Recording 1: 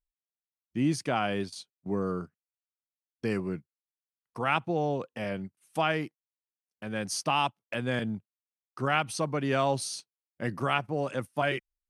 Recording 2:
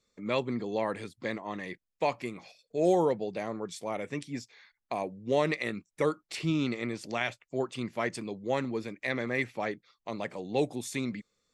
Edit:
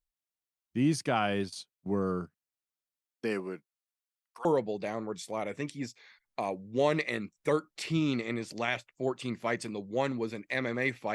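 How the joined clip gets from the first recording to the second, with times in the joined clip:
recording 1
3.06–4.45 s: high-pass 180 Hz -> 1.4 kHz
4.45 s: go over to recording 2 from 2.98 s

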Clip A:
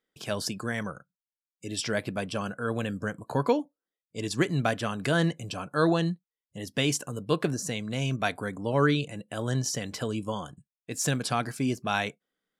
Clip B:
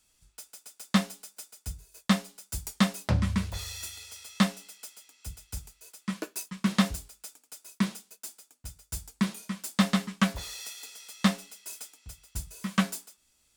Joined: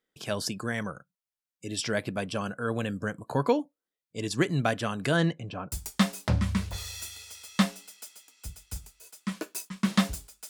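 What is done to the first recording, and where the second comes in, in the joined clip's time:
clip A
5.16–5.72 s: low-pass 8.8 kHz -> 1.1 kHz
5.72 s: go over to clip B from 2.53 s

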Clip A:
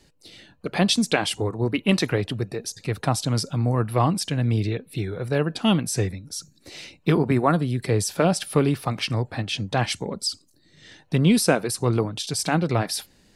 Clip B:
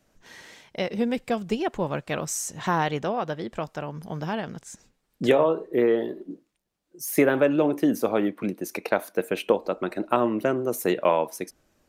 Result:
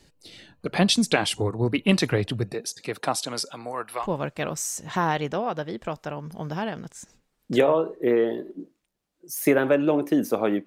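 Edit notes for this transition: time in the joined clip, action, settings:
clip A
2.53–4.08 s: high-pass 190 Hz -> 890 Hz
4.02 s: go over to clip B from 1.73 s, crossfade 0.12 s

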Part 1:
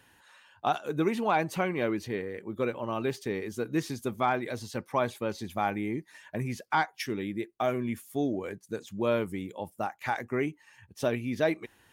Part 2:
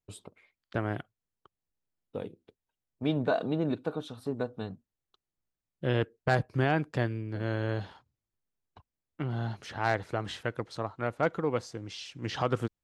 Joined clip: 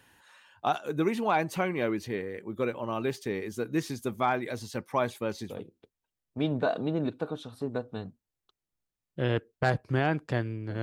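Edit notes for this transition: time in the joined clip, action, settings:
part 1
5.51 s: go over to part 2 from 2.16 s, crossfade 0.18 s

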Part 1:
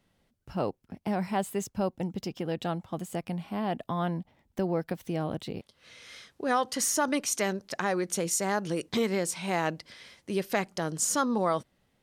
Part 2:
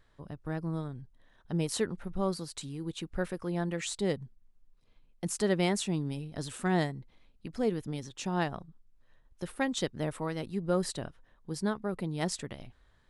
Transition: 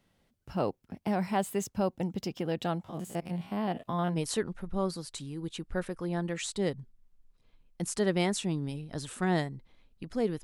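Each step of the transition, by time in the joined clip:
part 1
2.84–4.18 s: spectrogram pixelated in time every 50 ms
4.14 s: go over to part 2 from 1.57 s, crossfade 0.08 s

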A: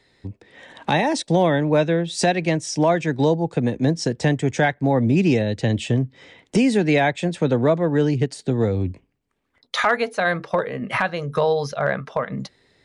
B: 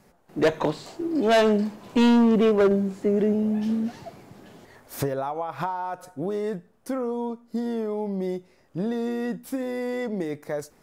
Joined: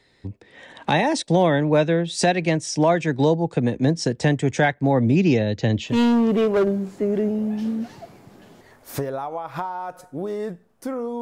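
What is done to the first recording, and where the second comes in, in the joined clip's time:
A
5.16–5.99 s: Chebyshev low-pass 6.8 kHz, order 5
5.90 s: go over to B from 1.94 s, crossfade 0.18 s

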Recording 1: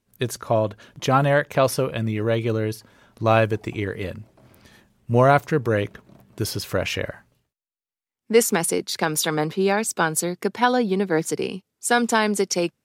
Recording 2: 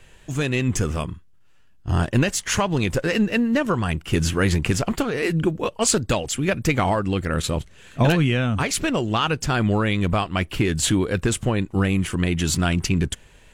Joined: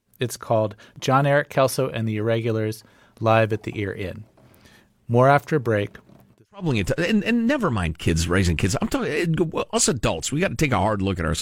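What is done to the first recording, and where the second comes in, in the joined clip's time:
recording 1
6.48 s: go over to recording 2 from 2.54 s, crossfade 0.32 s exponential

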